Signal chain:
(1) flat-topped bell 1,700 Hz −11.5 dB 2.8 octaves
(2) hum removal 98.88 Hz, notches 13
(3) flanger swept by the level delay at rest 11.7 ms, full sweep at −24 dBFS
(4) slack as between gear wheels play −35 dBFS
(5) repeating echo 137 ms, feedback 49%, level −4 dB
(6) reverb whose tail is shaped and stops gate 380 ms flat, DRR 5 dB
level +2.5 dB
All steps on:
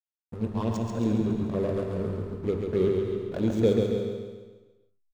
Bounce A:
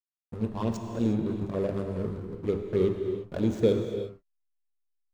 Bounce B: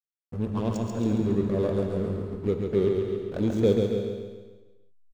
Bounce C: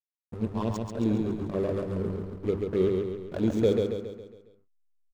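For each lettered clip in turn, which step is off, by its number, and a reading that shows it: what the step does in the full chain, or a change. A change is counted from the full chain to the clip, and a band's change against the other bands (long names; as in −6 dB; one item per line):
5, echo-to-direct ratio 0.0 dB to −5.0 dB
2, change in integrated loudness +1.0 LU
6, echo-to-direct ratio 0.0 dB to −3.0 dB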